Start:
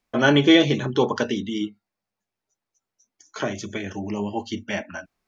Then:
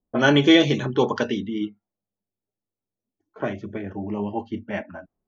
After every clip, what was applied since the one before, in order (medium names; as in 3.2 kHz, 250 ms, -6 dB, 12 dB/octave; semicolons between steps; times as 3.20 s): level-controlled noise filter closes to 440 Hz, open at -16 dBFS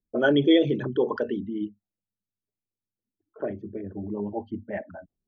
resonances exaggerated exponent 2; trim -3.5 dB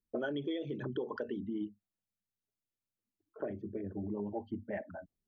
compression 16:1, threshold -29 dBFS, peak gain reduction 16 dB; trim -4 dB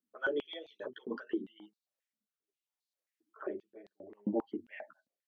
chorus voices 4, 0.83 Hz, delay 12 ms, depth 3.4 ms; rotary cabinet horn 6.7 Hz, later 0.65 Hz, at 1.27 s; step-sequenced high-pass 7.5 Hz 250–4100 Hz; trim +3 dB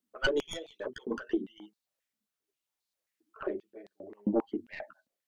tracing distortion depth 0.17 ms; trim +4.5 dB